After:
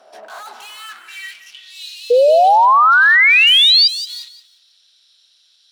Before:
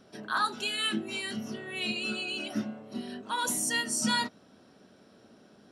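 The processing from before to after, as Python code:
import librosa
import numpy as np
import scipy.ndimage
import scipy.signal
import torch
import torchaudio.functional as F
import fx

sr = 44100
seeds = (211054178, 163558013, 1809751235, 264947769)

y = fx.tube_stage(x, sr, drive_db=45.0, bias=0.55)
y = fx.filter_sweep_highpass(y, sr, from_hz=680.0, to_hz=3800.0, start_s=0.45, end_s=1.72, q=4.4)
y = fx.spec_paint(y, sr, seeds[0], shape='rise', start_s=2.1, length_s=1.78, low_hz=470.0, high_hz=4900.0, level_db=-19.0)
y = fx.echo_feedback(y, sr, ms=175, feedback_pct=31, wet_db=-14)
y = F.gain(torch.from_numpy(y), 9.0).numpy()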